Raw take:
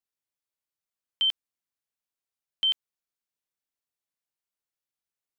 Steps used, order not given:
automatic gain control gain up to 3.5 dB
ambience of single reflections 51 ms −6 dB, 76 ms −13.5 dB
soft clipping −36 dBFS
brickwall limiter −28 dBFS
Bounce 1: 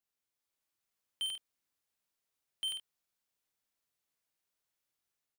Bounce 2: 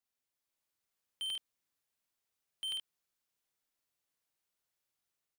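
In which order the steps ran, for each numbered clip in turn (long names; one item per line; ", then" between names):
brickwall limiter, then soft clipping, then automatic gain control, then ambience of single reflections
automatic gain control, then ambience of single reflections, then brickwall limiter, then soft clipping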